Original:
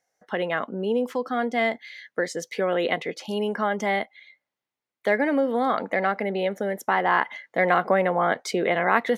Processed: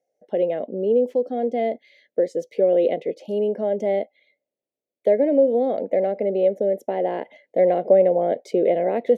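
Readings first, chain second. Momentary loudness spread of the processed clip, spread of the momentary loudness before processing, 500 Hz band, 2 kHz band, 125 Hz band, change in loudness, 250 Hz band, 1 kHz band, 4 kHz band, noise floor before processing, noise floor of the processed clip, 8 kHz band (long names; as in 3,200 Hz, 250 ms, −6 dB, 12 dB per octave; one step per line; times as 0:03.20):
10 LU, 8 LU, +6.5 dB, −16.5 dB, can't be measured, +3.0 dB, +1.5 dB, −6.0 dB, below −10 dB, below −85 dBFS, below −85 dBFS, below −10 dB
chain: drawn EQ curve 120 Hz 0 dB, 590 Hz +14 dB, 1,200 Hz −23 dB, 2,300 Hz −5 dB, 5,200 Hz −8 dB
level −5.5 dB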